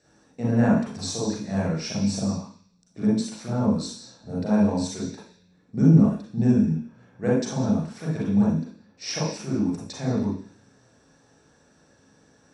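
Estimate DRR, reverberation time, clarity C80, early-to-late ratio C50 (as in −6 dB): −7.0 dB, 0.50 s, 6.5 dB, 0.5 dB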